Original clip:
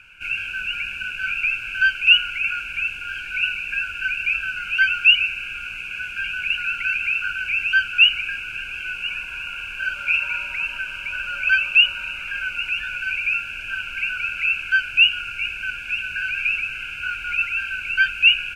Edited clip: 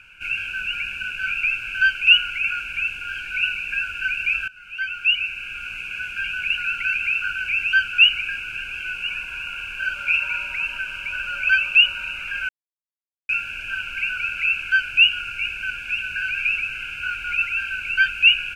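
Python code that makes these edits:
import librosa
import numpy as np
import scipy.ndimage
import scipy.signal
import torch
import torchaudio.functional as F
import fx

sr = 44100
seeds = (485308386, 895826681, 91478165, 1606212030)

y = fx.edit(x, sr, fx.fade_in_from(start_s=4.48, length_s=1.28, floor_db=-20.5),
    fx.silence(start_s=12.49, length_s=0.8), tone=tone)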